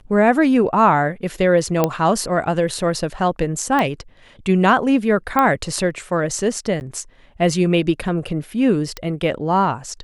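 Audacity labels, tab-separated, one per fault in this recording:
1.840000	1.840000	click −3 dBFS
3.790000	3.790000	click −8 dBFS
5.390000	5.390000	click −5 dBFS
6.800000	6.810000	drop-out 9.8 ms
8.970000	8.970000	click −12 dBFS

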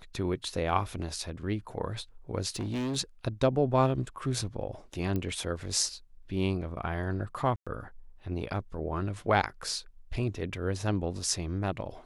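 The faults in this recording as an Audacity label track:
2.550000	2.970000	clipping −29.5 dBFS
5.160000	5.160000	click −20 dBFS
7.560000	7.670000	drop-out 106 ms

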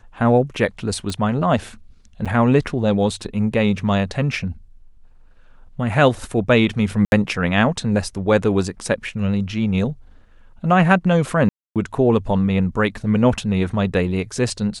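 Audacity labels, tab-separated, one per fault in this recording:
1.100000	1.100000	click −13 dBFS
2.250000	2.260000	drop-out 6.6 ms
7.050000	7.120000	drop-out 71 ms
11.490000	11.760000	drop-out 267 ms

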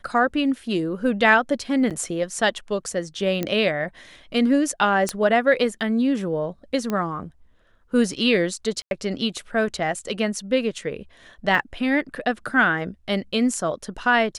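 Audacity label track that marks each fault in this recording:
1.900000	1.910000	drop-out 7.7 ms
3.430000	3.430000	click −11 dBFS
5.090000	5.090000	click −10 dBFS
6.900000	6.900000	click −13 dBFS
8.820000	8.910000	drop-out 91 ms
11.550000	11.550000	drop-out 2.2 ms

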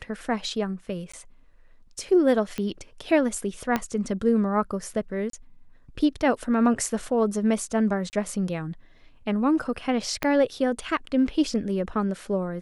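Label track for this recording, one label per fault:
1.120000	1.140000	drop-out 15 ms
2.580000	2.580000	click −17 dBFS
3.760000	3.760000	click −10 dBFS
5.300000	5.330000	drop-out 33 ms
8.100000	8.130000	drop-out 29 ms
10.230000	10.230000	click −10 dBFS

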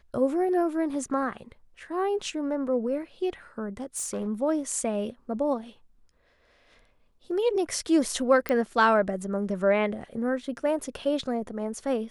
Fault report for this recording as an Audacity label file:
3.770000	4.280000	clipping −27 dBFS
8.490000	8.490000	click −14 dBFS

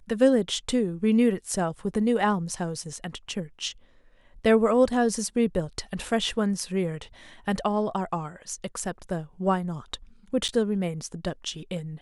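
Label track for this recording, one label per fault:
10.480000	10.490000	drop-out 8 ms

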